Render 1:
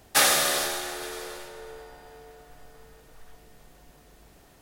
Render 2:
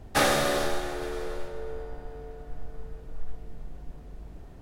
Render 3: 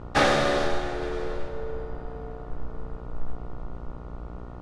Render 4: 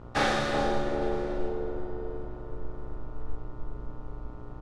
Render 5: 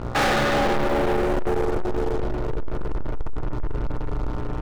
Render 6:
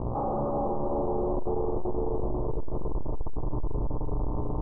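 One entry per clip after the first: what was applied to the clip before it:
tilt EQ -3.5 dB/octave; on a send at -12 dB: reverberation RT60 0.35 s, pre-delay 18 ms
mains buzz 60 Hz, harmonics 24, -45 dBFS -4 dB/octave; distance through air 100 m; trim +3 dB
doubling 41 ms -5 dB; bucket-brigade echo 376 ms, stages 2048, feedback 53%, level -3 dB; trim -6 dB
low-pass 2.9 kHz; waveshaping leveller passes 5; trim -2.5 dB
steep low-pass 1.1 kHz 72 dB/octave; peak limiter -25 dBFS, peak gain reduction 11 dB; trim +2.5 dB

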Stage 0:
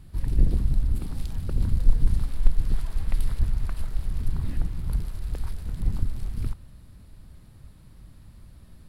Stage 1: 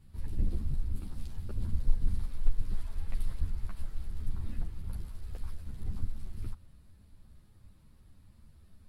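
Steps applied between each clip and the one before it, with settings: three-phase chorus; trim -6.5 dB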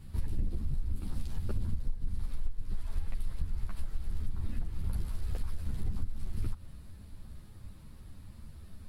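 compression 8:1, threshold -35 dBFS, peak gain reduction 19.5 dB; trim +9 dB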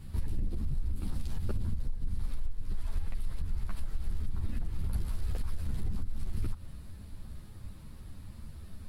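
peak limiter -26 dBFS, peak gain reduction 6 dB; trim +3 dB

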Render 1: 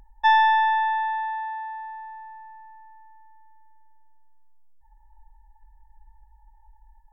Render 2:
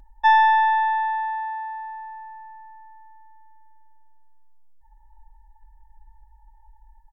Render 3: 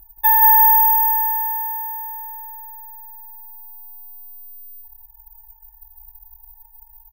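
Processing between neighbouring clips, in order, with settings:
comb 3.3 ms, depth 33%
feedback delay 176 ms, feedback 48%, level -3.5 dB; low-pass that closes with the level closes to 1.6 kHz, closed at -14 dBFS; careless resampling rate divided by 3×, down none, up zero stuff; trim -3 dB

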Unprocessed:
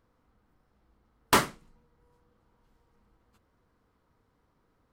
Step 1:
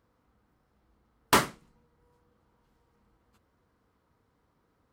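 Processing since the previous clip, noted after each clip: high-pass 44 Hz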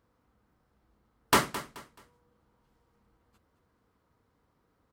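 feedback delay 215 ms, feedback 30%, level -14 dB; trim -1 dB

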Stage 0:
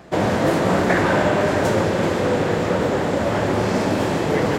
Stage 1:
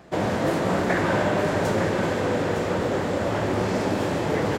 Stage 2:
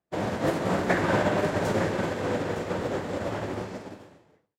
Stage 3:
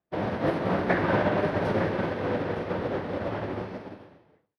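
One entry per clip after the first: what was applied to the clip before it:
delay 910 ms -8 dB; trim -5 dB
fade out at the end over 1.26 s; upward expansion 2.5:1, over -45 dBFS; trim +1 dB
boxcar filter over 6 samples

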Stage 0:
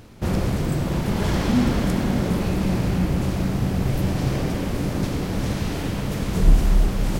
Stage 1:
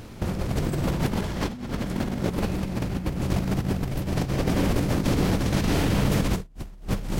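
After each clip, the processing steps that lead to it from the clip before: compressor with a negative ratio -25 dBFS, ratio -0.5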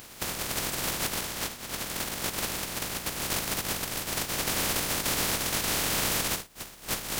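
spectral contrast reduction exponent 0.26; trim -6 dB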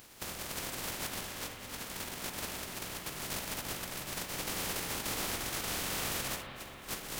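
reverberation RT60 3.7 s, pre-delay 44 ms, DRR 4 dB; trim -8.5 dB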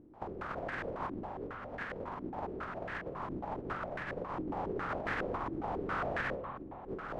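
step-sequenced low-pass 7.3 Hz 320–1700 Hz

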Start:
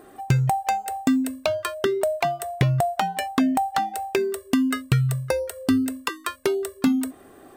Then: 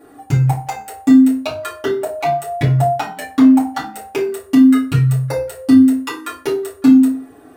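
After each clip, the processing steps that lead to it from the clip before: reverberation RT60 0.40 s, pre-delay 4 ms, DRR -9 dB; trim -6.5 dB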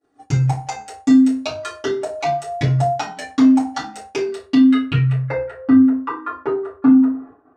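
low-pass sweep 6 kHz -> 1.2 kHz, 4.13–5.94 s; expander -32 dBFS; trim -3 dB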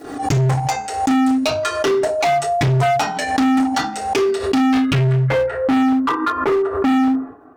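hard clipper -22 dBFS, distortion -4 dB; swell ahead of each attack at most 68 dB/s; trim +8 dB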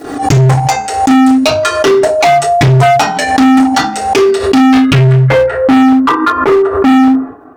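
attacks held to a fixed rise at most 150 dB/s; trim +9 dB

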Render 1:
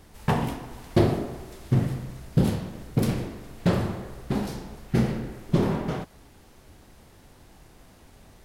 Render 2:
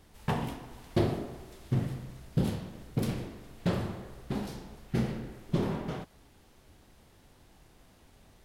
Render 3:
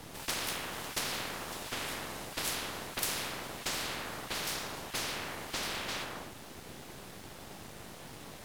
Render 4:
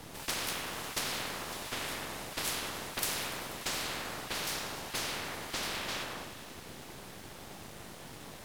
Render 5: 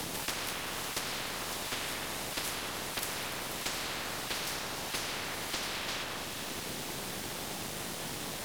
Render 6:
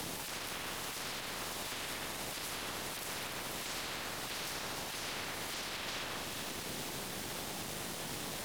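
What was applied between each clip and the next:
peaking EQ 3.3 kHz +2.5 dB; trim -7 dB
gated-style reverb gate 340 ms falling, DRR 7 dB; full-wave rectifier; spectrum-flattening compressor 10:1
thinning echo 97 ms, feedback 82%, level -14 dB
three bands compressed up and down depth 100%
peak limiter -29 dBFS, peak gain reduction 10.5 dB; trim -1.5 dB

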